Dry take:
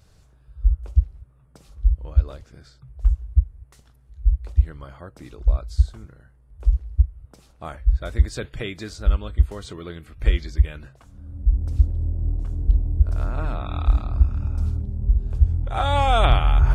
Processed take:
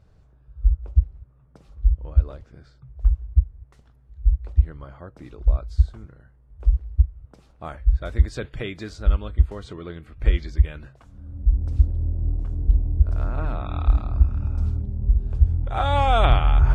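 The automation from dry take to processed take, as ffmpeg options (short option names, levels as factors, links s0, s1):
-af "asetnsamples=n=441:p=0,asendcmd='1.09 lowpass f 1700;5.19 lowpass f 2300;7.64 lowpass f 3600;9.28 lowpass f 2400;10.34 lowpass f 3700;12.08 lowpass f 2700;14.44 lowpass f 3700',lowpass=f=1100:p=1"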